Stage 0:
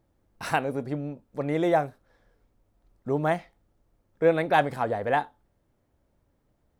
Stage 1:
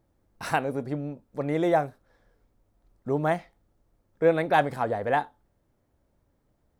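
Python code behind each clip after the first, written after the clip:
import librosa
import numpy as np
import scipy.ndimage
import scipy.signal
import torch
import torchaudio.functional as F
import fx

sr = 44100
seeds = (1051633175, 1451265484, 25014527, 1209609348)

y = fx.peak_eq(x, sr, hz=2800.0, db=-2.0, octaves=0.77)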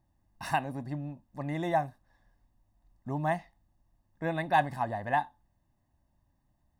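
y = x + 0.84 * np.pad(x, (int(1.1 * sr / 1000.0), 0))[:len(x)]
y = y * librosa.db_to_amplitude(-6.5)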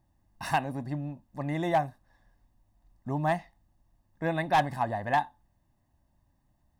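y = np.clip(10.0 ** (20.0 / 20.0) * x, -1.0, 1.0) / 10.0 ** (20.0 / 20.0)
y = y * librosa.db_to_amplitude(2.5)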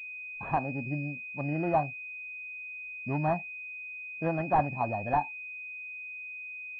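y = fx.noise_reduce_blind(x, sr, reduce_db=16)
y = fx.pwm(y, sr, carrier_hz=2500.0)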